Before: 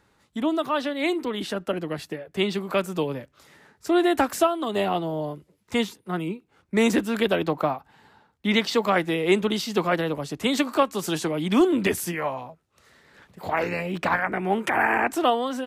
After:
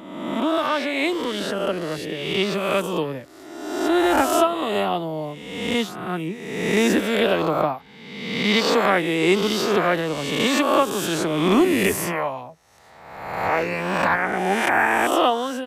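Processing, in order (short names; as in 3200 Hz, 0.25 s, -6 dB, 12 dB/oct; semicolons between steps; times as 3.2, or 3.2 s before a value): spectral swells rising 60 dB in 1.21 s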